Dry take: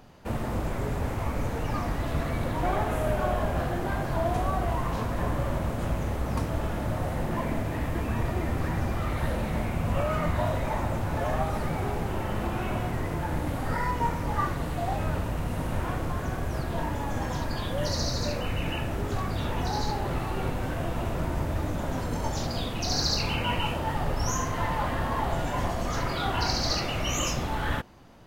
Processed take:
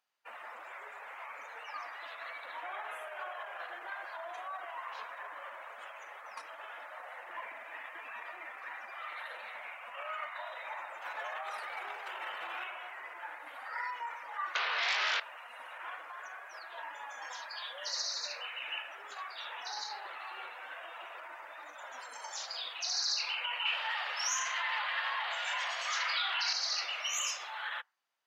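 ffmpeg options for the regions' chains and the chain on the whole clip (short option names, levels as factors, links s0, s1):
-filter_complex "[0:a]asettb=1/sr,asplit=3[s0][s1][s2];[s0]atrim=end=11.024[s3];[s1]atrim=start=11.02:end=12.64,asetpts=PTS-STARTPTS,afade=t=in:d=0.004:c=qsin,afade=t=out:st=1.616:d=0.004:c=qsin,bandreject=f=50:t=h:w=6,bandreject=f=100:t=h:w=6,bandreject=f=150:t=h:w=6,bandreject=f=200:t=h:w=6,bandreject=f=250:t=h:w=6,bandreject=f=300:t=h:w=6,bandreject=f=350:t=h:w=6,bandreject=f=400:t=h:w=6,bandreject=f=450:t=h:w=6,acontrast=83[s4];[s2]atrim=start=12.636[s5];[s3][s4]acrossfade=d=0.004:c1=hsin:c2=qsin[s6];[s6][s5]acrossfade=d=0.004:c1=qsin:c2=hsin,asettb=1/sr,asplit=3[s7][s8][s9];[s7]atrim=end=14.554[s10];[s8]atrim=start=14.55:end=15.2,asetpts=PTS-STARTPTS,afade=t=in:d=0.004:c=qsin,afade=t=out:st=0.646:d=0.004:c=qsin,highpass=f=240:w=0.5412,highpass=f=240:w=1.3066,equalizer=f=300:t=q:w=4:g=-10,equalizer=f=760:t=q:w=4:g=-3,equalizer=f=1500:t=q:w=4:g=3,equalizer=f=2100:t=q:w=4:g=-3,lowpass=f=3100:w=0.5412,lowpass=f=3100:w=1.3066,aeval=exprs='0.112*sin(PI/2*7.08*val(0)/0.112)':c=same,asplit=2[s11][s12];[s12]adelay=22,volume=0.75[s13];[s11][s13]amix=inputs=2:normalize=0,atrim=end_sample=28665[s14];[s9]atrim=start=15.196[s15];[s10][s14]acrossfade=d=0.004:c1=hsin:c2=qsin[s16];[s16][s15]acrossfade=d=0.004:c1=qsin:c2=hsin,asettb=1/sr,asplit=3[s17][s18][s19];[s17]atrim=end=23.654[s20];[s18]atrim=start=23.65:end=26.53,asetpts=PTS-STARTPTS,afade=t=in:d=0.004:c=qsin,afade=t=out:st=2.876:d=0.004:c=qsin,highpass=310,equalizer=f=2700:w=0.62:g=9.5[s21];[s19]atrim=start=26.526[s22];[s20][s21]acrossfade=d=0.004:c1=hsin:c2=qsin[s23];[s23][s22]acrossfade=d=0.004:c1=qsin:c2=hsin,alimiter=limit=0.0944:level=0:latency=1:release=19,highpass=1400,afftdn=nr=22:nf=-47,volume=0.891"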